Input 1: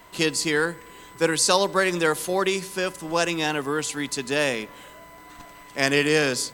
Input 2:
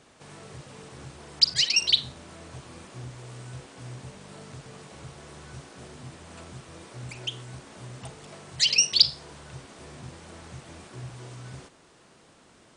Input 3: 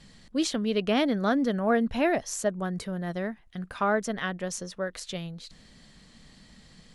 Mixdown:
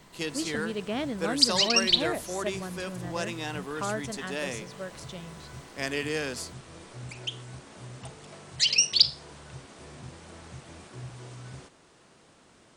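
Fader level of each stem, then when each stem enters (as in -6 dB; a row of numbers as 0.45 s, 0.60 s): -10.5 dB, -1.5 dB, -7.0 dB; 0.00 s, 0.00 s, 0.00 s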